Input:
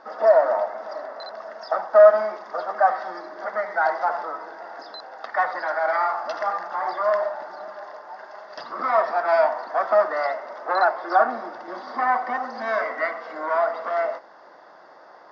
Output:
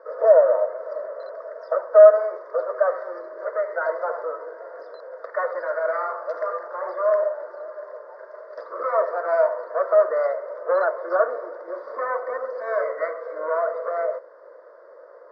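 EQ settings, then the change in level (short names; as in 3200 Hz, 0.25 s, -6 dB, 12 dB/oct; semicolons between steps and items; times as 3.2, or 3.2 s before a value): resonant high-pass 500 Hz, resonance Q 4.9; LPF 1200 Hz 6 dB/oct; fixed phaser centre 790 Hz, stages 6; -1.0 dB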